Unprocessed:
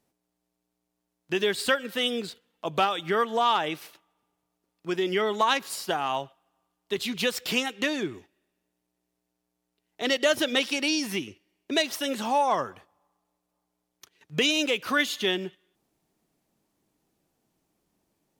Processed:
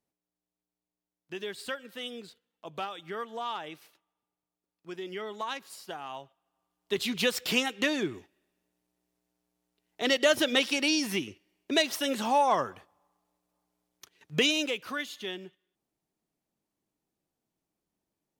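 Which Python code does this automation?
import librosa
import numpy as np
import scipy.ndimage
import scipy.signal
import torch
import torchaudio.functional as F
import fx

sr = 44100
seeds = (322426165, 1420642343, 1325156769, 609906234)

y = fx.gain(x, sr, db=fx.line((6.22, -12.0), (6.95, -0.5), (14.4, -0.5), (15.02, -11.0)))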